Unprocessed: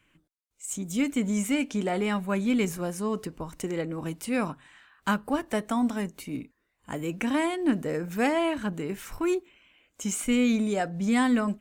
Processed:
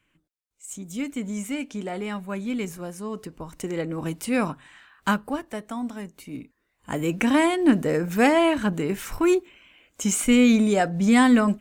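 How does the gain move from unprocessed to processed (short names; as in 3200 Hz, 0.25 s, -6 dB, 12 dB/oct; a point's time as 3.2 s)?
3.09 s -3.5 dB
4.01 s +4 dB
5.08 s +4 dB
5.53 s -5 dB
6.08 s -5 dB
7.02 s +6.5 dB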